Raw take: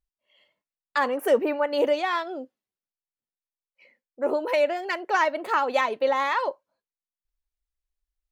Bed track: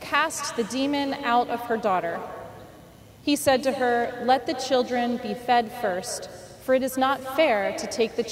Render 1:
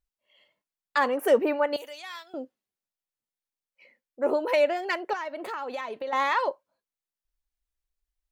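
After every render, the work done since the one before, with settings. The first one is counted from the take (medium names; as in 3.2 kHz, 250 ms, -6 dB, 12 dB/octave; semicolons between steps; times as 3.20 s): 1.76–2.34 s: pre-emphasis filter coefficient 0.97; 5.13–6.13 s: compression 4:1, threshold -32 dBFS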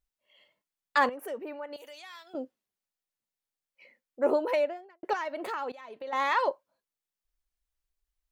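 1.09–2.35 s: compression 2:1, threshold -48 dBFS; 4.27–5.03 s: studio fade out; 5.72–6.46 s: fade in linear, from -18.5 dB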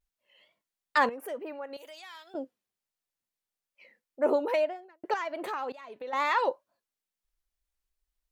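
wow and flutter 100 cents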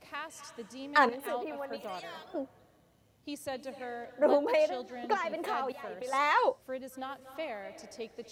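add bed track -18 dB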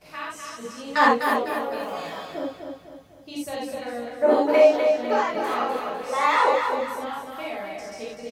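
feedback delay 251 ms, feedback 42%, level -6 dB; gated-style reverb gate 110 ms flat, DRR -6 dB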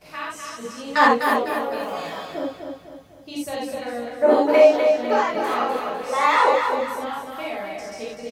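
trim +2.5 dB; peak limiter -3 dBFS, peak gain reduction 2 dB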